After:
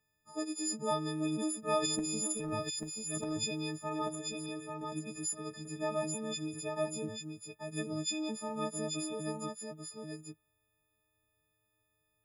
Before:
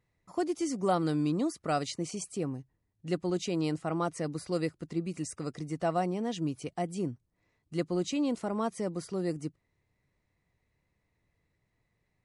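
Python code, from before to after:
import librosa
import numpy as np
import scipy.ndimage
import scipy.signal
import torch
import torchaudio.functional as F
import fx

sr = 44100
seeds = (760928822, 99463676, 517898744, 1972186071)

y = fx.freq_snap(x, sr, grid_st=6)
y = fx.transient(y, sr, attack_db=-6, sustain_db=12, at=(1.82, 3.35), fade=0.02)
y = fx.level_steps(y, sr, step_db=20, at=(4.15, 4.92))
y = y + 10.0 ** (-4.5 / 20.0) * np.pad(y, (int(839 * sr / 1000.0), 0))[:len(y)]
y = y * 10.0 ** (-7.5 / 20.0)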